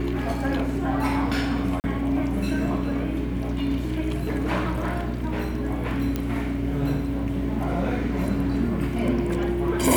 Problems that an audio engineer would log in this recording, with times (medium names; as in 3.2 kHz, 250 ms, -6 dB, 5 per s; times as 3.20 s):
hum 60 Hz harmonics 7 -29 dBFS
1.80–1.84 s: dropout 39 ms
6.16 s: pop -13 dBFS